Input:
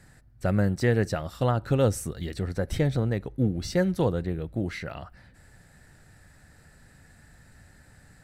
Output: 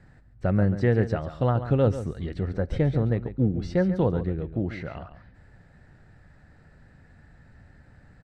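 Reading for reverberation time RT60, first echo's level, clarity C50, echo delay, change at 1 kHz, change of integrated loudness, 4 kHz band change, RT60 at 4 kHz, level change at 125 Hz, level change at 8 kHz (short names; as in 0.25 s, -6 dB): none, -12.0 dB, none, 0.139 s, 0.0 dB, +1.5 dB, -7.5 dB, none, +2.0 dB, under -15 dB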